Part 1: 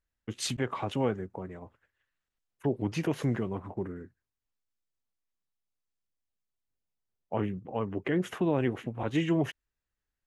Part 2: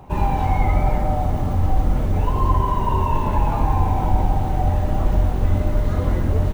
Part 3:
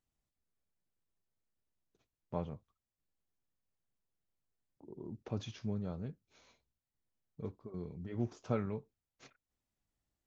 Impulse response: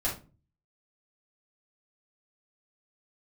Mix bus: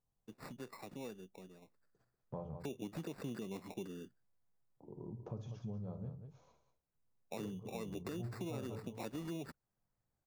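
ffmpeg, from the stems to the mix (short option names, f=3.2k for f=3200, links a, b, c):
-filter_complex "[0:a]highpass=180,equalizer=f=450:t=o:w=0.77:g=3,acrusher=samples=14:mix=1:aa=0.000001,volume=-6dB,afade=t=in:st=1.8:d=0.28:silence=0.251189[a];[2:a]equalizer=f=125:t=o:w=1:g=7,equalizer=f=250:t=o:w=1:g=-4,equalizer=f=500:t=o:w=1:g=5,equalizer=f=1k:t=o:w=1:g=7,equalizer=f=2k:t=o:w=1:g=-10,equalizer=f=4k:t=o:w=1:g=-6,volume=-7dB,asplit=3[b][c][d];[c]volume=-11dB[e];[d]volume=-9dB[f];[a][b]amix=inputs=2:normalize=0,equalizer=f=180:t=o:w=1.1:g=7,alimiter=level_in=2.5dB:limit=-24dB:level=0:latency=1:release=116,volume=-2.5dB,volume=0dB[g];[3:a]atrim=start_sample=2205[h];[e][h]afir=irnorm=-1:irlink=0[i];[f]aecho=0:1:192:1[j];[g][i][j]amix=inputs=3:normalize=0,acompressor=threshold=-43dB:ratio=2.5"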